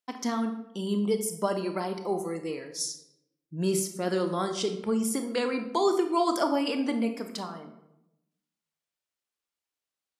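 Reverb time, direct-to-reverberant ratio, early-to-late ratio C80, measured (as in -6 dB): 0.90 s, 6.5 dB, 12.0 dB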